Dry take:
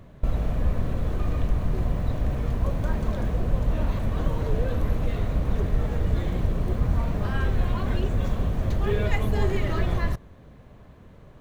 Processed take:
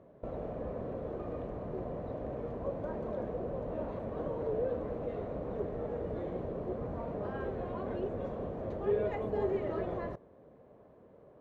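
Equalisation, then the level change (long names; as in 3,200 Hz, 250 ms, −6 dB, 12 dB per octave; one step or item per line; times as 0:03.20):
resonant band-pass 500 Hz, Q 1.6
0.0 dB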